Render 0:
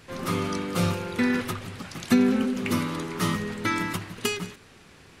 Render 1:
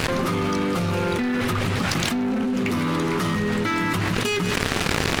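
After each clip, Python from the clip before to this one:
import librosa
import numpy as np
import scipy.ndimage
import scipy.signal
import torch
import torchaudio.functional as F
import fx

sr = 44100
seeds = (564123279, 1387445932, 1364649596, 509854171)

y = fx.high_shelf(x, sr, hz=5500.0, db=-7.0)
y = fx.leveller(y, sr, passes=3)
y = fx.env_flatten(y, sr, amount_pct=100)
y = y * librosa.db_to_amplitude(-11.0)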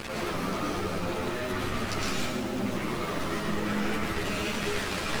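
y = fx.cycle_switch(x, sr, every=2, mode='muted')
y = fx.rev_freeverb(y, sr, rt60_s=1.2, hf_ratio=0.95, predelay_ms=75, drr_db=-4.5)
y = fx.ensemble(y, sr)
y = y * librosa.db_to_amplitude(-7.0)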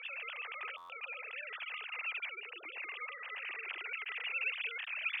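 y = fx.sine_speech(x, sr)
y = fx.bandpass_q(y, sr, hz=2600.0, q=5.3)
y = fx.buffer_glitch(y, sr, at_s=(0.77,), block=512, repeats=10)
y = y * librosa.db_to_amplitude(1.0)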